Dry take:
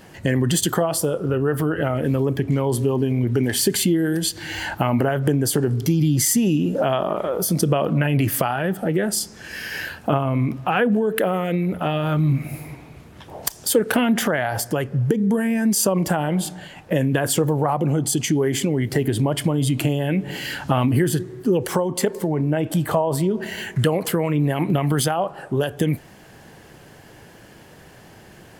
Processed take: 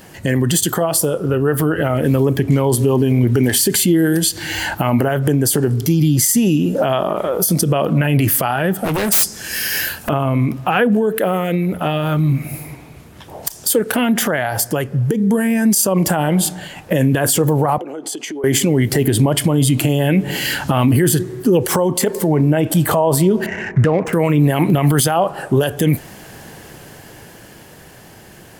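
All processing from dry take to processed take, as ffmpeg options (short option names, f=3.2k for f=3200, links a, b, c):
-filter_complex "[0:a]asettb=1/sr,asplit=3[a][b][c];[a]atrim=end=8.844[d];[b]atrim=start=8.84:end=10.09,asetpts=PTS-STARTPTS,afade=t=in:d=0.004:c=qsin,afade=t=out:st=1.246:d=0.004:c=qsin,highshelf=f=5k:g=11,aeval=exprs='0.112*(abs(mod(val(0)/0.112+3,4)-2)-1)':c=same[e];[c]atrim=start=10.086[f];[d][e]acrossfade=d=0.004:c1=hsin:c2=qsin[g];[g][f]acrossfade=d=0.004:c1=qsin:c2=hsin,asettb=1/sr,asplit=3[h][i][j];[h]atrim=end=17.784[k];[i]atrim=start=17.78:end=18.44,asetpts=PTS-STARTPTS,afade=t=in:d=0.004:c=qsin,afade=t=out:st=0.656:d=0.004:c=qsin,highpass=f=330:w=0.5412,highpass=f=330:w=1.3066,aemphasis=mode=reproduction:type=75kf,acompressor=threshold=-32dB:ratio=5:attack=3.2:release=140:knee=1:detection=peak[l];[j]atrim=start=18.436[m];[k][l]acrossfade=d=0.004:c1=hsin:c2=qsin[n];[n][m]acrossfade=d=0.004:c1=qsin:c2=hsin,asettb=1/sr,asplit=3[o][p][q];[o]atrim=end=23.464[r];[p]atrim=start=23.46:end=24.13,asetpts=PTS-STARTPTS,afade=t=in:d=0.004:c=qsin,afade=t=out:st=0.666:d=0.004:c=qsin,asuperstop=centerf=3900:order=8:qfactor=1.4,adynamicsmooth=sensitivity=2.5:basefreq=2k,equalizer=f=13k:w=0.7:g=-14.5[s];[q]atrim=start=24.126[t];[r][s]acrossfade=d=0.004:c1=hsin:c2=qsin[u];[u][t]acrossfade=d=0.004:c1=qsin:c2=hsin,highshelf=f=7.1k:g=8.5,dynaudnorm=f=220:g=17:m=11.5dB,alimiter=level_in=8dB:limit=-1dB:release=50:level=0:latency=1,volume=-4.5dB"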